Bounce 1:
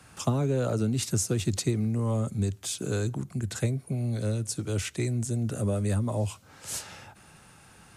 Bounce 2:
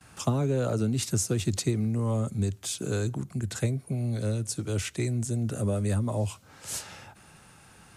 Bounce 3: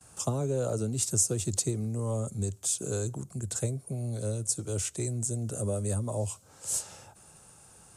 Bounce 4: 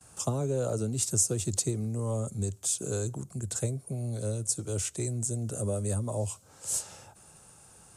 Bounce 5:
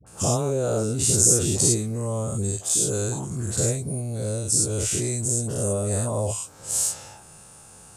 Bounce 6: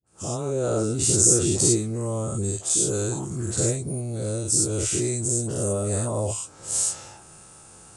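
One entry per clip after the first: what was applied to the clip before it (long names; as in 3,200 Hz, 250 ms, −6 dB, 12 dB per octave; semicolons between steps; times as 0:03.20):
noise gate with hold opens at −48 dBFS
octave-band graphic EQ 250/500/2,000/4,000/8,000 Hz −4/+4/−8/−3/+11 dB; level −3.5 dB
no processing that can be heard
every bin's largest magnitude spread in time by 120 ms; all-pass dispersion highs, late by 67 ms, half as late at 780 Hz; level +2.5 dB
fade in at the beginning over 0.66 s; hollow resonant body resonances 340/1,300 Hz, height 7 dB; level −1 dB; Ogg Vorbis 48 kbit/s 22,050 Hz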